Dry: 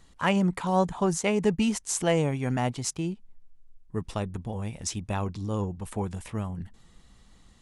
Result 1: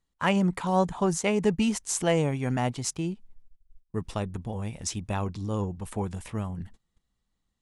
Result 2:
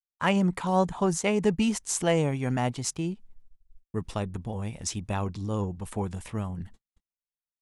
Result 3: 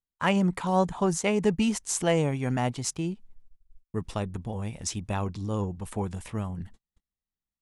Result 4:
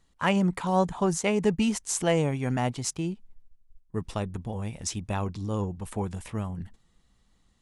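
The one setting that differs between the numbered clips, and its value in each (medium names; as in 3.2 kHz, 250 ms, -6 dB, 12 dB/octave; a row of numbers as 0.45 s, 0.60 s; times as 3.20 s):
gate, range: -23 dB, -59 dB, -40 dB, -10 dB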